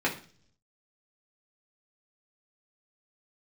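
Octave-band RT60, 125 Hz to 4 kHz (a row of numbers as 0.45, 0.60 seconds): 0.95, 0.70, 0.50, 0.40, 0.40, 0.55 seconds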